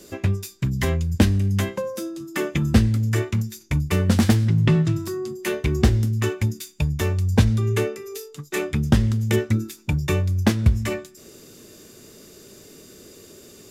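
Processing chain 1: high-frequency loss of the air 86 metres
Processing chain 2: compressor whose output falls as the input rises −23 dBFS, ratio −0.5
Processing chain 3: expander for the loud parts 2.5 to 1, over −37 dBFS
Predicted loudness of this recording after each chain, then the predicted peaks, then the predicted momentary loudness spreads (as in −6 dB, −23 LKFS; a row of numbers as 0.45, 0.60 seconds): −22.5, −26.0, −28.5 LKFS; −4.0, −9.5, −4.5 dBFS; 10, 17, 18 LU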